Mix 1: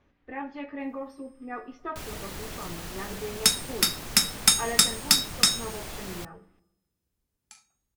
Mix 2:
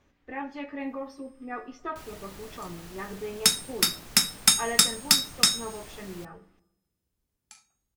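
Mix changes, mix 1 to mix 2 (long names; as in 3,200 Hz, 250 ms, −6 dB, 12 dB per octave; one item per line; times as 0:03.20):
speech: remove high-frequency loss of the air 140 metres
first sound −8.0 dB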